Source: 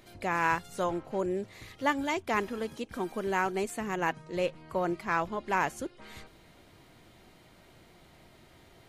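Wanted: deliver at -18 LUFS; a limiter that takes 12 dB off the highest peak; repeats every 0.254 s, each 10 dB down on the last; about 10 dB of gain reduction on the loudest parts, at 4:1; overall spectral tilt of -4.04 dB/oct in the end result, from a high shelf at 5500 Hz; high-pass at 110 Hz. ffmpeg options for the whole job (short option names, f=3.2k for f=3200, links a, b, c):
-af "highpass=110,highshelf=f=5.5k:g=6,acompressor=threshold=-33dB:ratio=4,alimiter=level_in=8.5dB:limit=-24dB:level=0:latency=1,volume=-8.5dB,aecho=1:1:254|508|762|1016:0.316|0.101|0.0324|0.0104,volume=24.5dB"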